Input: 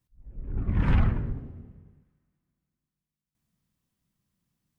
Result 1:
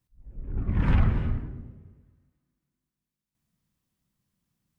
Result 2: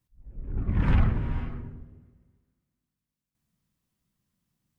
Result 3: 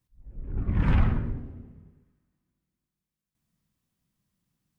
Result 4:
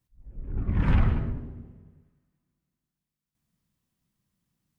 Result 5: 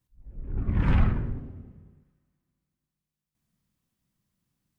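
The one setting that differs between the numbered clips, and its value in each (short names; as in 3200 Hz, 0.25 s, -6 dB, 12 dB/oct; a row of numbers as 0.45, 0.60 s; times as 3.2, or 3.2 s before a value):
non-linear reverb, gate: 0.33, 0.52, 0.15, 0.22, 0.1 s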